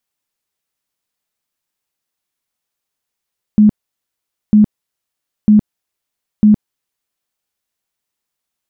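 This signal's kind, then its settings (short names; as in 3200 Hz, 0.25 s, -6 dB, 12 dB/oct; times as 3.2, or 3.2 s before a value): tone bursts 211 Hz, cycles 24, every 0.95 s, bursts 4, -4 dBFS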